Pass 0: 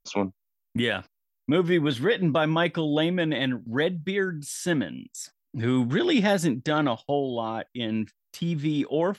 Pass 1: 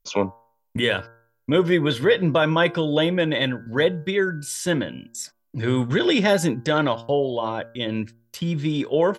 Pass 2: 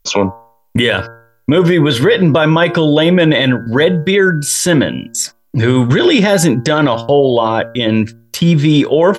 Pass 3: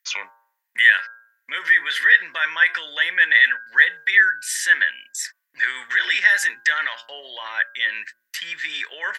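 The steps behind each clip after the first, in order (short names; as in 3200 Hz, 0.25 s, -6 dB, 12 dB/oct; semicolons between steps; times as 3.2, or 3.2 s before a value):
comb 2 ms, depth 38%; de-hum 115.2 Hz, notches 14; gain +4 dB
maximiser +16 dB; gain -1 dB
resonant high-pass 1800 Hz, resonance Q 14; gain -11 dB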